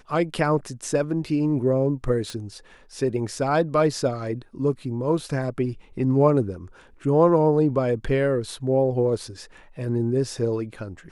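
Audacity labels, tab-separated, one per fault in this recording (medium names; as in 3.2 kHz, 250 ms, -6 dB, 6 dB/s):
2.300000	2.300000	pop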